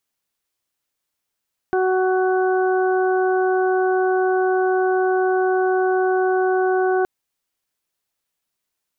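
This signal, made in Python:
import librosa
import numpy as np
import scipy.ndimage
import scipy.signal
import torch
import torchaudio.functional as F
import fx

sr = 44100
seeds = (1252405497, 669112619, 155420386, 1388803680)

y = fx.additive_steady(sr, length_s=5.32, hz=373.0, level_db=-17.0, upper_db=(-5, -15.0, -10))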